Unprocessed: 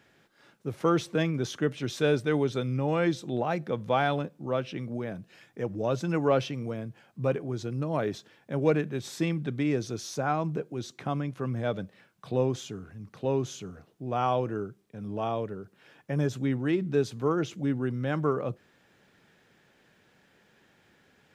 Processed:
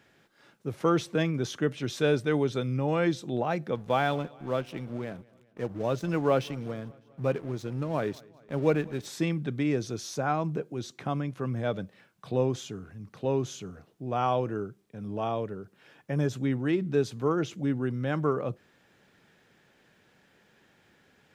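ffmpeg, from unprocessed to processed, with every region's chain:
ffmpeg -i in.wav -filter_complex "[0:a]asettb=1/sr,asplit=3[link_01][link_02][link_03];[link_01]atrim=end=3.754[link_04];[link_02]atrim=start=3.75:end=9.06,asetpts=PTS-STARTPTS,afade=type=in:duration=0.004:curve=qsin,afade=type=out:start_time=5.306:duration=0.004:curve=qsin,aeval=exprs='sgn(val(0))*max(abs(val(0))-0.00473,0)':channel_layout=same,aecho=1:1:201|402|603|804:0.0631|0.0372|0.022|0.013,atrim=end_sample=234171[link_05];[link_03]atrim=start=9.056[link_06];[link_04][link_05]acrossfade=duration=0.004:curve1=hsin:curve2=qsin[link_07];[link_07][link_06]acrossfade=duration=0.004:curve1=qsin:curve2=hsin" out.wav

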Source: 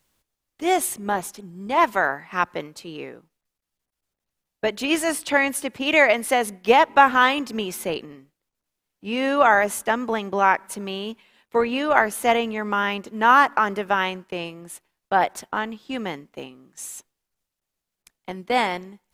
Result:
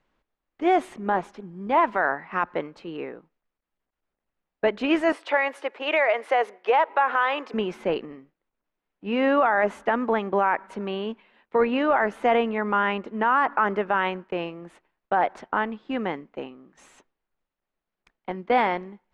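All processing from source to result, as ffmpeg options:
ffmpeg -i in.wav -filter_complex "[0:a]asettb=1/sr,asplit=3[link_01][link_02][link_03];[link_01]atrim=end=5.124[link_04];[link_02]atrim=start=5.12:end=7.54,asetpts=PTS-STARTPTS,afade=type=in:duration=0.004:curve=qsin,afade=type=out:start_time=2.416:duration=0.004:curve=qsin,highpass=frequency=410:width=0.5412,highpass=frequency=410:width=1.3066,acompressor=threshold=-17dB:ratio=6:attack=3.2:release=140:knee=1:detection=peak[link_05];[link_03]atrim=start=7.536[link_06];[link_04][link_05]acrossfade=duration=0.004:curve1=hsin:curve2=qsin[link_07];[link_07][link_06]acrossfade=duration=0.004:curve1=qsin:curve2=hsin,lowpass=2000,equalizer=frequency=100:width_type=o:width=1.1:gain=-10.5,alimiter=limit=-13.5dB:level=0:latency=1:release=20,volume=2.5dB" out.wav

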